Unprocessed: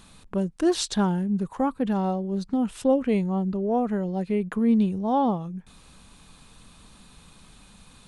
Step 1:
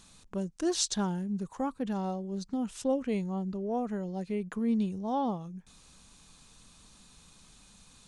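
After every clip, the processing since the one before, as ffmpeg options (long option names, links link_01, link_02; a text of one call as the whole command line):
ffmpeg -i in.wav -af "equalizer=frequency=6300:width=1.2:gain=10.5,volume=-8dB" out.wav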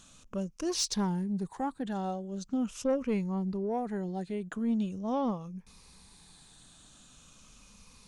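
ffmpeg -i in.wav -af "afftfilt=real='re*pow(10,7/40*sin(2*PI*(0.86*log(max(b,1)*sr/1024/100)/log(2)-(-0.42)*(pts-256)/sr)))':imag='im*pow(10,7/40*sin(2*PI*(0.86*log(max(b,1)*sr/1024/100)/log(2)-(-0.42)*(pts-256)/sr)))':win_size=1024:overlap=0.75,asoftclip=type=tanh:threshold=-21dB" out.wav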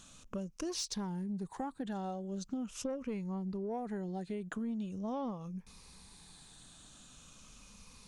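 ffmpeg -i in.wav -af "acompressor=threshold=-35dB:ratio=10" out.wav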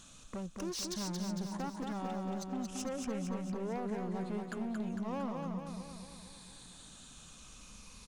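ffmpeg -i in.wav -filter_complex "[0:a]asoftclip=type=hard:threshold=-37.5dB,asplit=2[link_01][link_02];[link_02]aecho=0:1:227|454|681|908|1135|1362|1589|1816:0.631|0.353|0.198|0.111|0.0621|0.0347|0.0195|0.0109[link_03];[link_01][link_03]amix=inputs=2:normalize=0,volume=1dB" out.wav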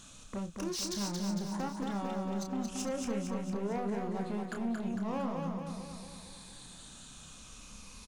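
ffmpeg -i in.wav -filter_complex "[0:a]asplit=2[link_01][link_02];[link_02]adelay=30,volume=-6.5dB[link_03];[link_01][link_03]amix=inputs=2:normalize=0,volume=2dB" out.wav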